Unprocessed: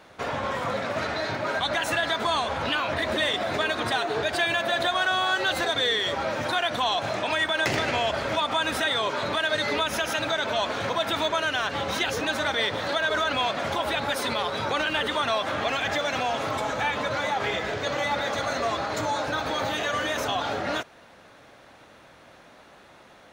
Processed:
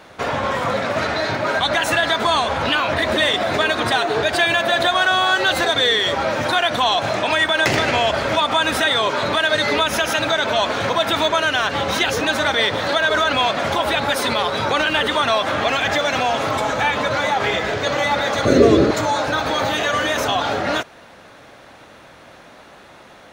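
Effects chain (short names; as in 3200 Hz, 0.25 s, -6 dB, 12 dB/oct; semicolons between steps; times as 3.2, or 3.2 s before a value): 18.45–18.91 resonant low shelf 570 Hz +12 dB, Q 3; gain +7.5 dB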